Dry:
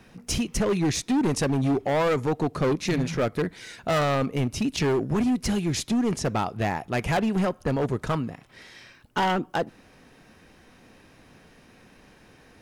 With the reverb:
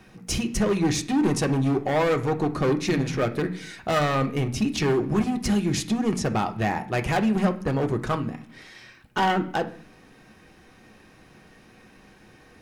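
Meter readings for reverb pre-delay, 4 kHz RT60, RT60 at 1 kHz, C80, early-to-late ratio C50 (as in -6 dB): 3 ms, 0.65 s, 0.50 s, 19.0 dB, 14.5 dB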